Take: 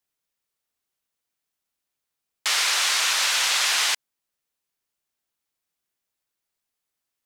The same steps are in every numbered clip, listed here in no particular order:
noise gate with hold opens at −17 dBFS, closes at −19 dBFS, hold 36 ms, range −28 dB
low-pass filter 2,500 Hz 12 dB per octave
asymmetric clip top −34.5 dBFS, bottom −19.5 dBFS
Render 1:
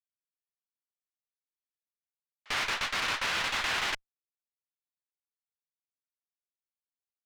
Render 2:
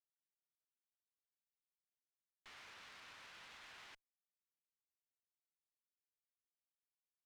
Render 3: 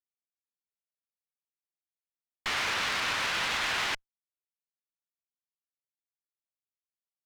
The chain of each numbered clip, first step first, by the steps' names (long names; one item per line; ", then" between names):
low-pass filter, then noise gate with hold, then asymmetric clip
low-pass filter, then asymmetric clip, then noise gate with hold
noise gate with hold, then low-pass filter, then asymmetric clip